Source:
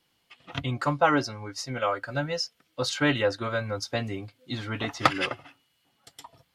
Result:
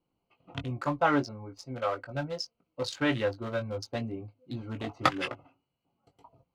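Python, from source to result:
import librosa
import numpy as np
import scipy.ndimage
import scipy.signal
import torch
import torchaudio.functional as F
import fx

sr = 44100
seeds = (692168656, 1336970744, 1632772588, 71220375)

y = fx.wiener(x, sr, points=25)
y = fx.chorus_voices(y, sr, voices=4, hz=1.0, base_ms=20, depth_ms=3.0, mix_pct=30)
y = y * librosa.db_to_amplitude(-1.0)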